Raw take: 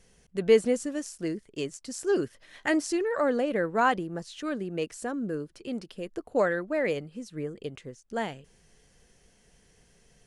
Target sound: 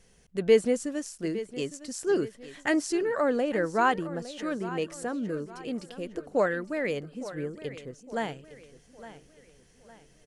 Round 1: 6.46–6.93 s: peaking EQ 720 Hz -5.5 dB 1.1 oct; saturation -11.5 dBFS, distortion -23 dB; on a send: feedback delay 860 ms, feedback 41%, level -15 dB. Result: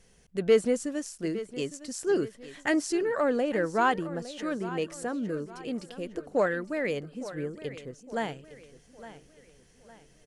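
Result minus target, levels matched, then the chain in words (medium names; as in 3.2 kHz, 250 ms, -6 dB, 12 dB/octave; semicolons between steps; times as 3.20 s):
saturation: distortion +16 dB
6.46–6.93 s: peaking EQ 720 Hz -5.5 dB 1.1 oct; saturation -2.5 dBFS, distortion -39 dB; on a send: feedback delay 860 ms, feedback 41%, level -15 dB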